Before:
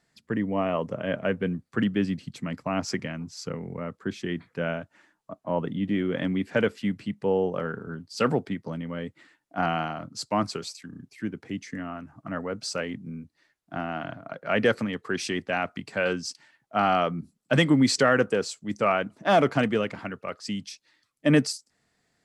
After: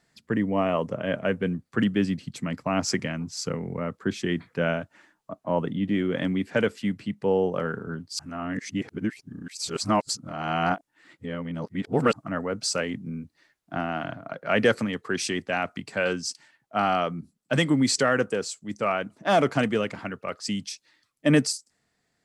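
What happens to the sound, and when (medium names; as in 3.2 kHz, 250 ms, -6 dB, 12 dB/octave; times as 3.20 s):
8.19–12.13 s: reverse
whole clip: dynamic bell 8.3 kHz, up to +6 dB, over -52 dBFS, Q 0.91; gain riding within 4 dB 2 s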